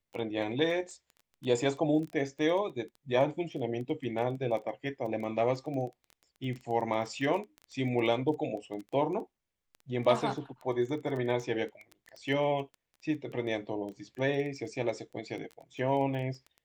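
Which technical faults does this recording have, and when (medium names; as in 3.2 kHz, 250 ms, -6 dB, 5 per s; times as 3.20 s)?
crackle 13 per s -37 dBFS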